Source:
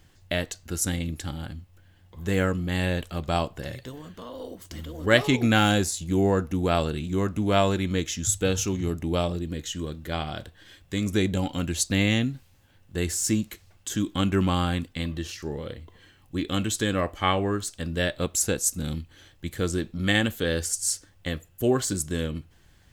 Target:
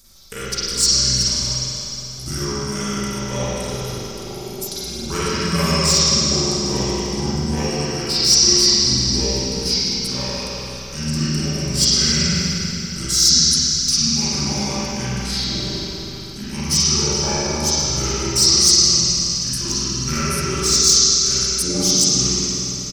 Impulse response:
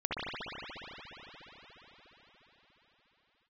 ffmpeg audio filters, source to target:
-filter_complex "[0:a]aecho=1:1:3.9:0.45,asplit=2[a][b];[b]acompressor=threshold=-31dB:ratio=8,volume=3dB[c];[a][c]amix=inputs=2:normalize=0,asetrate=33038,aresample=44100,atempo=1.33484,aphaser=in_gain=1:out_gain=1:delay=2.5:decay=0.3:speed=1.8:type=sinusoidal,aexciter=amount=6.4:drive=9.3:freq=3.9k[d];[1:a]atrim=start_sample=2205,asetrate=66150,aresample=44100[e];[d][e]afir=irnorm=-1:irlink=0,volume=-8.5dB"

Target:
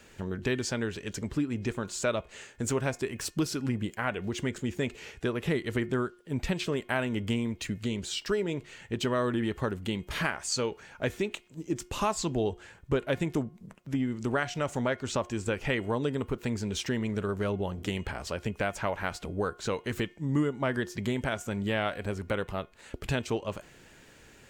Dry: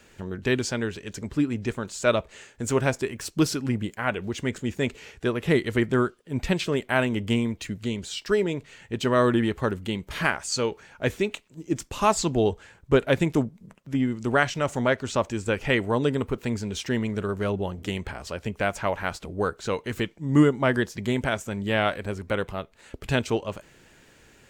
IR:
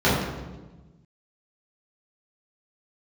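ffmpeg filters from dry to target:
-af "acompressor=threshold=-28dB:ratio=2.5,bandreject=f=357.8:t=h:w=4,bandreject=f=715.6:t=h:w=4,bandreject=f=1.0734k:t=h:w=4,bandreject=f=1.4312k:t=h:w=4,bandreject=f=1.789k:t=h:w=4,bandreject=f=2.1468k:t=h:w=4,bandreject=f=2.5046k:t=h:w=4,bandreject=f=2.8624k:t=h:w=4,bandreject=f=3.2202k:t=h:w=4"

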